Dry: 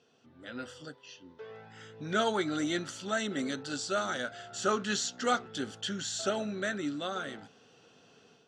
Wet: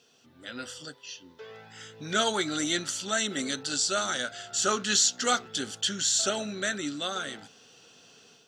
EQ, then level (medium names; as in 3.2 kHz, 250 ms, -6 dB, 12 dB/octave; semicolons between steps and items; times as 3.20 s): treble shelf 2.5 kHz +10.5 dB; treble shelf 5 kHz +4.5 dB; 0.0 dB